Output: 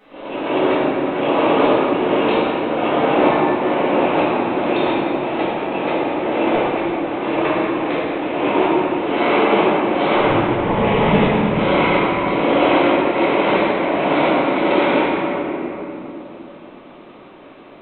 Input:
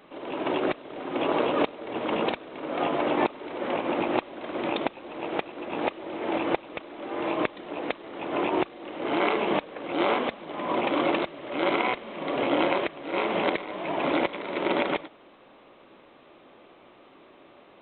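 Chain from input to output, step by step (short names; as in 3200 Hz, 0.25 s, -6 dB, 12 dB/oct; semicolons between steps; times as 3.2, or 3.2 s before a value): 10.14–11.34 frequency shift -130 Hz; reverb RT60 3.4 s, pre-delay 4 ms, DRR -12 dB; gain -2 dB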